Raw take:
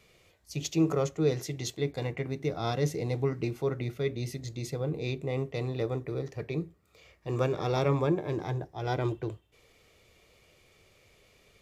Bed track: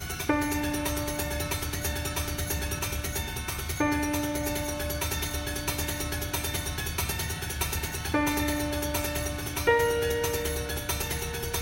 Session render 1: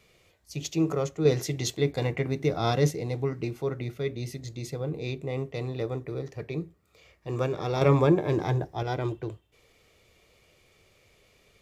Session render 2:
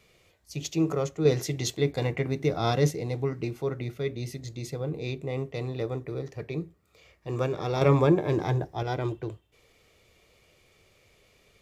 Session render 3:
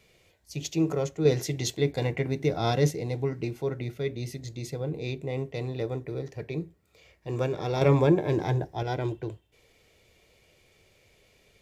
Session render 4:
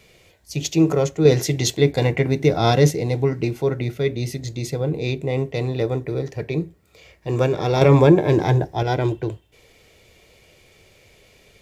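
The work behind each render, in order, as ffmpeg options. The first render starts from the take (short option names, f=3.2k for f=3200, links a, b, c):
-filter_complex "[0:a]asettb=1/sr,asplit=3[a][b][c];[a]atrim=end=1.254[d];[b]atrim=start=1.25:end=2.91,asetpts=PTS-STARTPTS,afade=t=in:d=0.004:c=qsin,afade=t=out:st=1.656:d=0.004:c=qsin,acontrast=31[e];[c]atrim=start=2.906[f];[d][e]acrossfade=d=0.004:c1=hsin:c2=qsin[g];[g][f]acrossfade=d=0.004:c1=qsin:c2=hsin,asettb=1/sr,asplit=3[h][i][j];[h]atrim=end=7.814[k];[i]atrim=start=7.81:end=8.83,asetpts=PTS-STARTPTS,afade=t=in:d=0.004:c=qsin,afade=t=out:st=1.016:d=0.004:c=qsin,acontrast=57[l];[j]atrim=start=8.826[m];[k][l]acrossfade=d=0.004:c1=hsin:c2=qsin[n];[n][m]acrossfade=d=0.004:c1=qsin:c2=hsin"
-af anull
-af "bandreject=f=1.2k:w=5.8"
-af "volume=9dB,alimiter=limit=-3dB:level=0:latency=1"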